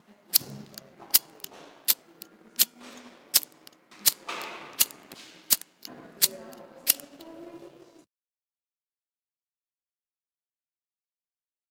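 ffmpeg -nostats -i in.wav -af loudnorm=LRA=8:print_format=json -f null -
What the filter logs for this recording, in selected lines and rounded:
"input_i" : "-25.4",
"input_tp" : "-0.4",
"input_lra" : "2.3",
"input_thresh" : "-38.0",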